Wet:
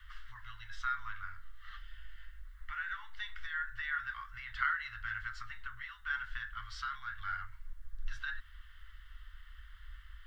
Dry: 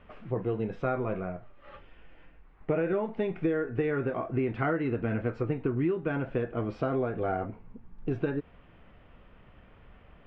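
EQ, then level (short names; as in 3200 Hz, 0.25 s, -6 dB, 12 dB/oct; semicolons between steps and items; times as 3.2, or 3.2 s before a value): inverse Chebyshev band-stop 210–520 Hz, stop band 80 dB; low shelf 140 Hz -8 dB; fixed phaser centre 660 Hz, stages 6; +15.5 dB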